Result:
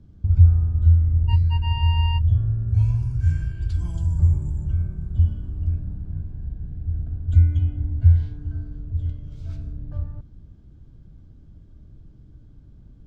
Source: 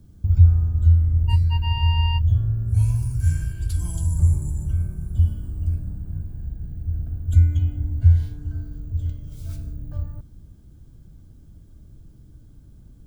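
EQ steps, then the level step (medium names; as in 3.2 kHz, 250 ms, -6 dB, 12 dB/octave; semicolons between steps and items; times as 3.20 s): distance through air 160 m; 0.0 dB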